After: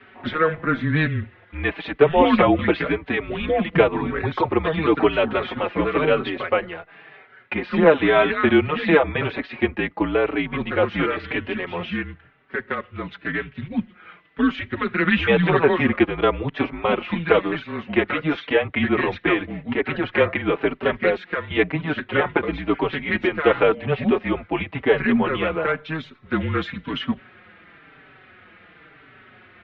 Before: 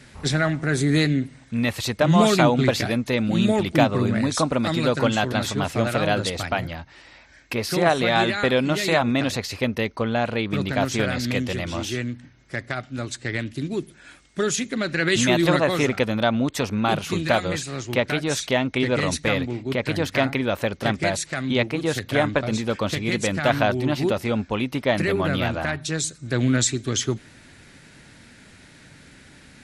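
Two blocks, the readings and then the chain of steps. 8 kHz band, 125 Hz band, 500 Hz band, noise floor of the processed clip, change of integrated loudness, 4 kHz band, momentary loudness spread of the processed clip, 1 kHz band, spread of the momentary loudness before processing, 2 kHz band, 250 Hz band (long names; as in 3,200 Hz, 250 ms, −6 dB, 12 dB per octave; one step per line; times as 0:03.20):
below −35 dB, −4.0 dB, +3.0 dB, −51 dBFS, +1.0 dB, −4.5 dB, 11 LU, +1.5 dB, 9 LU, +2.0 dB, +0.5 dB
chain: low-shelf EQ 390 Hz +5.5 dB
single-sideband voice off tune −160 Hz 380–3,100 Hz
barber-pole flanger 4.8 ms −0.96 Hz
level +6 dB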